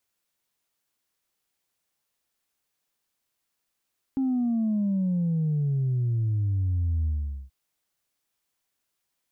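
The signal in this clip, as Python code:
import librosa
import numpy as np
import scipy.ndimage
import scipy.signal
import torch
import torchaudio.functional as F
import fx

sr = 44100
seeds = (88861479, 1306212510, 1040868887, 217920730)

y = fx.sub_drop(sr, level_db=-22.5, start_hz=270.0, length_s=3.33, drive_db=0.0, fade_s=0.44, end_hz=65.0)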